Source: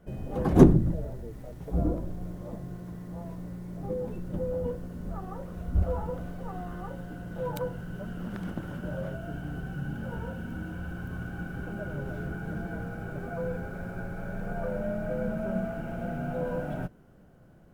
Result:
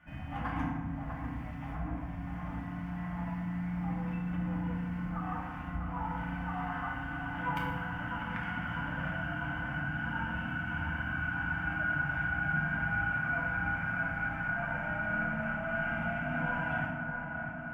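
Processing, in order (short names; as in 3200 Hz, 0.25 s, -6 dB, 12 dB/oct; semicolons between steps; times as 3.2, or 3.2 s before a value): EQ curve 270 Hz 0 dB, 410 Hz -24 dB, 760 Hz -7 dB, 2100 Hz +4 dB, 9100 Hz -8 dB; compressor 6:1, threshold -32 dBFS, peak gain reduction 20 dB; HPF 40 Hz; band shelf 1400 Hz +13 dB 2.6 oct; notch 3900 Hz, Q 7.6; dark delay 0.648 s, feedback 74%, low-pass 1800 Hz, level -7 dB; FDN reverb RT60 1.4 s, low-frequency decay 1×, high-frequency decay 0.55×, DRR -3.5 dB; gain -7.5 dB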